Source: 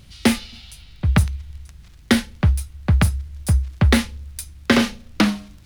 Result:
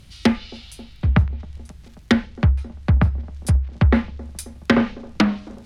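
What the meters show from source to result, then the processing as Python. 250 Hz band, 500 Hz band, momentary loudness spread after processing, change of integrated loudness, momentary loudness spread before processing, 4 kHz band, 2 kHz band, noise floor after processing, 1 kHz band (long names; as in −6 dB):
0.0 dB, 0.0 dB, 17 LU, −0.5 dB, 15 LU, −5.5 dB, −2.5 dB, −45 dBFS, −0.5 dB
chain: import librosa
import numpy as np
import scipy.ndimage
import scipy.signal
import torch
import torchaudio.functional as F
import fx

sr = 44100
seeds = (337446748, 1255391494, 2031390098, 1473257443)

y = fx.echo_wet_bandpass(x, sr, ms=268, feedback_pct=75, hz=430.0, wet_db=-19.5)
y = fx.env_lowpass_down(y, sr, base_hz=1500.0, full_db=-12.5)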